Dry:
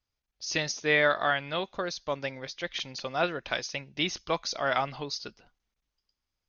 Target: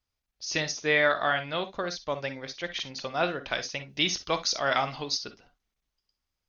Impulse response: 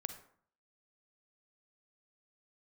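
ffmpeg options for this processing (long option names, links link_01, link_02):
-filter_complex "[0:a]asettb=1/sr,asplit=3[link_01][link_02][link_03];[link_01]atrim=end=3.894[link_04];[link_02]atrim=start=3.89:end=5.2,asetpts=PTS-STARTPTS,afade=type=in:duration=0.004:curve=qsin,afade=type=out:start_time=1.306:duration=0.004:curve=qsin,highshelf=frequency=3700:gain=8.5[link_05];[link_03]atrim=start=5.196[link_06];[link_04][link_05]acrossfade=duration=0.004:curve1=hsin:curve2=qsin[link_07];[link_07][link_06]acrossfade=duration=0.004:curve1=qsin:curve2=hsin[link_08];[1:a]atrim=start_sample=2205,atrim=end_sample=3087,asetrate=42777,aresample=44100[link_09];[link_08][link_09]afir=irnorm=-1:irlink=0,volume=2.5dB"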